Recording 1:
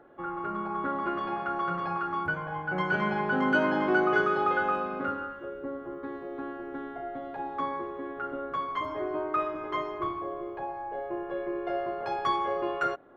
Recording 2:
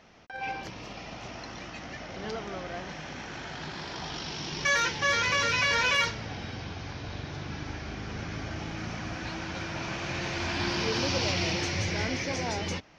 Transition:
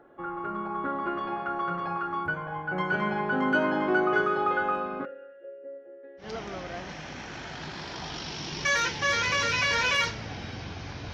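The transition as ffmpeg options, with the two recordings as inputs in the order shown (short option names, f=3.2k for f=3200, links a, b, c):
-filter_complex "[0:a]asplit=3[a][b][c];[a]afade=t=out:st=5.04:d=0.02[d];[b]asplit=3[e][f][g];[e]bandpass=f=530:t=q:w=8,volume=0dB[h];[f]bandpass=f=1.84k:t=q:w=8,volume=-6dB[i];[g]bandpass=f=2.48k:t=q:w=8,volume=-9dB[j];[h][i][j]amix=inputs=3:normalize=0,afade=t=in:st=5.04:d=0.02,afade=t=out:st=6.35:d=0.02[k];[c]afade=t=in:st=6.35:d=0.02[l];[d][k][l]amix=inputs=3:normalize=0,apad=whole_dur=11.13,atrim=end=11.13,atrim=end=6.35,asetpts=PTS-STARTPTS[m];[1:a]atrim=start=2.17:end=7.13,asetpts=PTS-STARTPTS[n];[m][n]acrossfade=d=0.18:c1=tri:c2=tri"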